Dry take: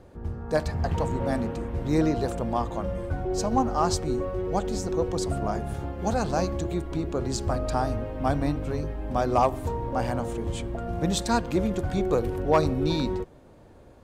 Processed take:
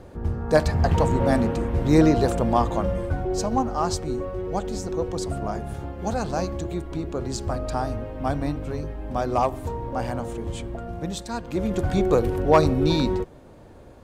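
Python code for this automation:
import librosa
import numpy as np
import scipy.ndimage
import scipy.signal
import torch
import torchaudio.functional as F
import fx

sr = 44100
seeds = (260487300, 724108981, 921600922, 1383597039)

y = fx.gain(x, sr, db=fx.line((2.74, 6.5), (3.69, -0.5), (10.74, -0.5), (11.32, -7.5), (11.82, 4.5)))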